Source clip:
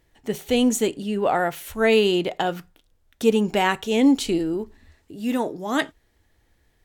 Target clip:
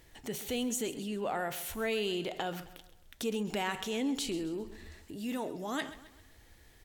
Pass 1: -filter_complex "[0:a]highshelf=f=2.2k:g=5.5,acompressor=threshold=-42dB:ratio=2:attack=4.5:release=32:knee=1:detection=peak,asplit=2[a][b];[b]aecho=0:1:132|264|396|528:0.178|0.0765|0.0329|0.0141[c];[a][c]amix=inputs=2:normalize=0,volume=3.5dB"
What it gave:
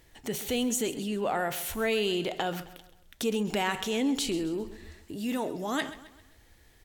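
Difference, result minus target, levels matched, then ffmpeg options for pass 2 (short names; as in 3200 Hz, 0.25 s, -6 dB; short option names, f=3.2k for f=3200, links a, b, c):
compressor: peak gain reduction -5 dB
-filter_complex "[0:a]highshelf=f=2.2k:g=5.5,acompressor=threshold=-52dB:ratio=2:attack=4.5:release=32:knee=1:detection=peak,asplit=2[a][b];[b]aecho=0:1:132|264|396|528:0.178|0.0765|0.0329|0.0141[c];[a][c]amix=inputs=2:normalize=0,volume=3.5dB"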